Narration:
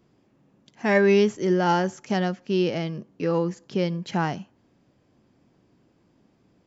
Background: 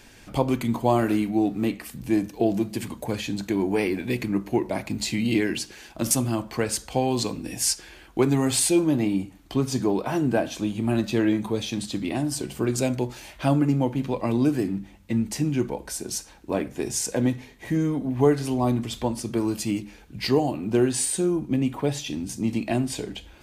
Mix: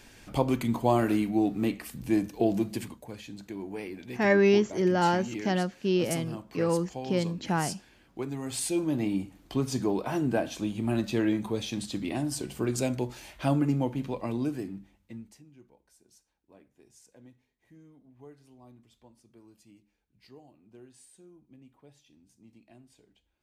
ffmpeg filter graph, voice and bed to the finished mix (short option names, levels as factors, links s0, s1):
-filter_complex "[0:a]adelay=3350,volume=0.708[s0];[1:a]volume=2.11,afade=t=out:st=2.73:d=0.27:silence=0.281838,afade=t=in:st=8.4:d=0.75:silence=0.334965,afade=t=out:st=13.73:d=1.7:silence=0.0473151[s1];[s0][s1]amix=inputs=2:normalize=0"